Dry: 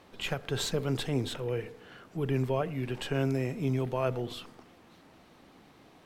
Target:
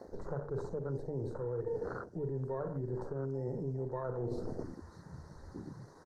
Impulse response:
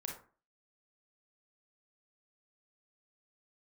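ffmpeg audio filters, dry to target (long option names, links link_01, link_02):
-filter_complex "[0:a]asplit=2[link_01][link_02];[link_02]equalizer=frequency=250:width_type=o:width=0.67:gain=-8,equalizer=frequency=630:width_type=o:width=0.67:gain=-3,equalizer=frequency=6300:width_type=o:width=0.67:gain=12[link_03];[1:a]atrim=start_sample=2205[link_04];[link_03][link_04]afir=irnorm=-1:irlink=0,volume=-0.5dB[link_05];[link_01][link_05]amix=inputs=2:normalize=0,acrossover=split=96|1200[link_06][link_07][link_08];[link_06]acompressor=threshold=-44dB:ratio=4[link_09];[link_07]acompressor=threshold=-27dB:ratio=4[link_10];[link_08]acompressor=threshold=-42dB:ratio=4[link_11];[link_09][link_10][link_11]amix=inputs=3:normalize=0,alimiter=level_in=3.5dB:limit=-24dB:level=0:latency=1:release=282,volume=-3.5dB,asuperstop=centerf=2800:order=8:qfactor=1.2,aecho=1:1:2.1:0.39,afwtdn=0.00708,areverse,acompressor=threshold=-49dB:ratio=12,areverse,equalizer=frequency=12000:width=0.58:gain=-7.5,bandreject=frequency=50:width_type=h:width=6,bandreject=frequency=100:width_type=h:width=6,bandreject=frequency=150:width_type=h:width=6,volume=15dB" -ar 48000 -c:a libopus -b:a 24k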